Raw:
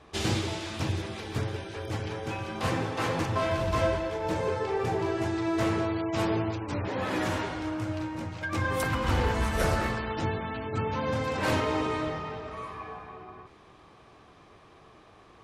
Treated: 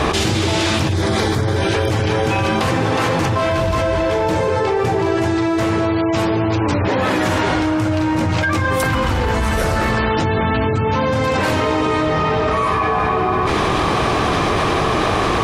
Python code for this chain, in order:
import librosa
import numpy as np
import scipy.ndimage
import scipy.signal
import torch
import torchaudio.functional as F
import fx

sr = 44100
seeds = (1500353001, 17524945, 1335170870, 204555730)

y = fx.peak_eq(x, sr, hz=2700.0, db=-13.0, octaves=0.29, at=(0.93, 1.62))
y = fx.lowpass(y, sr, hz=9100.0, slope=12, at=(6.37, 6.92))
y = fx.low_shelf(y, sr, hz=140.0, db=5.5, at=(10.43, 10.86))
y = fx.env_flatten(y, sr, amount_pct=100)
y = y * 10.0 ** (5.5 / 20.0)